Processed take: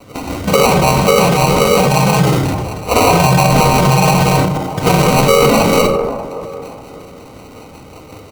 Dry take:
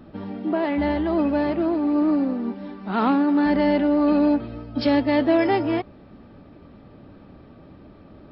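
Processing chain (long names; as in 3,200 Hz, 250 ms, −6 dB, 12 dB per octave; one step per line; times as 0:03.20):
three-way crossover with the lows and the highs turned down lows −19 dB, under 490 Hz, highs −15 dB, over 2,300 Hz
comb filter 4.3 ms, depth 79%
dynamic equaliser 1,300 Hz, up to +4 dB, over −36 dBFS, Q 0.79
single-sideband voice off tune −110 Hz 150–3,400 Hz
in parallel at −12 dB: gain into a clipping stage and back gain 22.5 dB
on the sum: rotating-speaker cabinet horn 5.5 Hz
pitch-shifted copies added −5 semitones −2 dB, −3 semitones −2 dB
sample-rate reduction 1,700 Hz, jitter 0%
on a send: delay with a band-pass on its return 587 ms, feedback 30%, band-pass 580 Hz, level −15 dB
on the sum: rectangular room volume 2,700 cubic metres, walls furnished, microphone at 1.9 metres
transient designer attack +3 dB, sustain +8 dB
boost into a limiter +13 dB
level −1 dB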